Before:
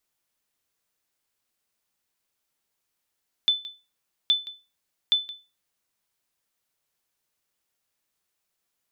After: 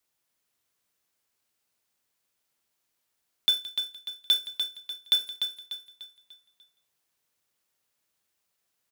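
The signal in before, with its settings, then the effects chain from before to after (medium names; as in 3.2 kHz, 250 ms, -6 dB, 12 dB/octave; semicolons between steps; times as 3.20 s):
sonar ping 3.51 kHz, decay 0.29 s, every 0.82 s, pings 3, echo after 0.17 s, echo -17 dB -13 dBFS
block-companded coder 3-bit; high-pass 45 Hz; feedback delay 296 ms, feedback 42%, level -7 dB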